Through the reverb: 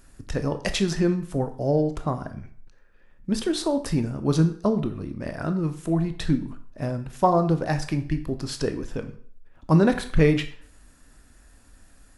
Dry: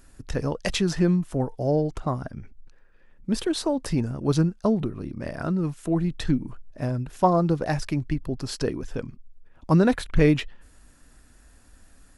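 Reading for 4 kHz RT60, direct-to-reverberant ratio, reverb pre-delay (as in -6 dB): 0.45 s, 8.0 dB, 16 ms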